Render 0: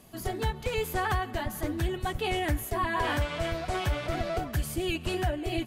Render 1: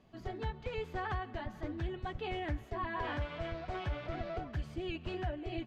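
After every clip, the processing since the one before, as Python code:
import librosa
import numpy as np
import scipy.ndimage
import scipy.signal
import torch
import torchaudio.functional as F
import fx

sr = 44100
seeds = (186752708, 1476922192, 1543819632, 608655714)

y = fx.air_absorb(x, sr, metres=190.0)
y = y * librosa.db_to_amplitude(-8.0)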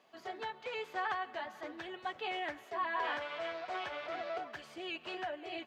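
y = scipy.signal.sosfilt(scipy.signal.butter(2, 590.0, 'highpass', fs=sr, output='sos'), x)
y = y * librosa.db_to_amplitude(4.0)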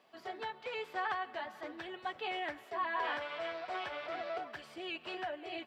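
y = fx.notch(x, sr, hz=6500.0, q=8.5)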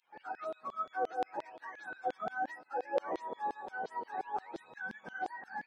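y = fx.octave_mirror(x, sr, pivot_hz=750.0)
y = fx.filter_lfo_highpass(y, sr, shape='saw_down', hz=5.7, low_hz=430.0, high_hz=3800.0, q=1.5)
y = y * librosa.db_to_amplitude(4.0)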